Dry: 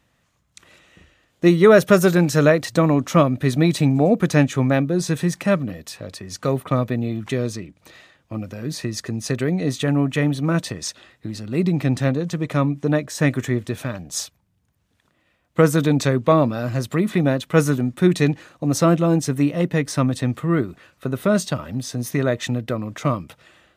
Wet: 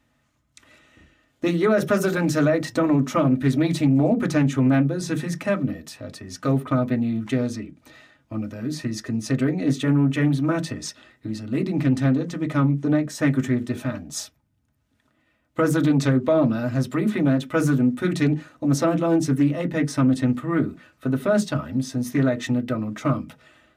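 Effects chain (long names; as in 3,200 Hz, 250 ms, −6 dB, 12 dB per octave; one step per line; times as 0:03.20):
on a send at −2 dB: convolution reverb RT60 0.15 s, pre-delay 3 ms
on the sum: brickwall limiter −6.5 dBFS, peak gain reduction 10.5 dB
highs frequency-modulated by the lows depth 0.15 ms
level −4.5 dB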